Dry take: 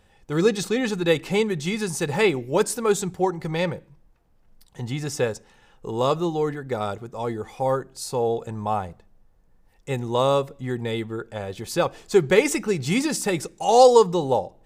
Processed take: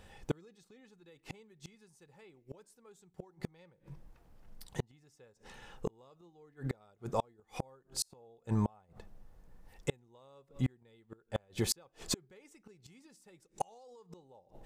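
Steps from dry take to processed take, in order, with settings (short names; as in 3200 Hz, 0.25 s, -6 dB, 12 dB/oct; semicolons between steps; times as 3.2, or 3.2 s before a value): limiter -13.5 dBFS, peak gain reduction 10.5 dB; flipped gate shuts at -22 dBFS, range -38 dB; gain +2.5 dB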